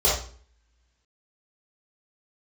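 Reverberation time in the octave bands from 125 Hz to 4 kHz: 0.55, 0.60, 0.45, 0.45, 0.45, 0.40 s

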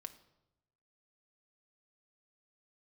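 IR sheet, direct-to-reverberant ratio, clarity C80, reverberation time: 7.0 dB, 17.0 dB, 0.90 s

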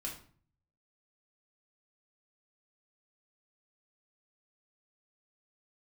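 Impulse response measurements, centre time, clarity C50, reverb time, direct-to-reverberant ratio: 24 ms, 8.0 dB, 0.45 s, -2.0 dB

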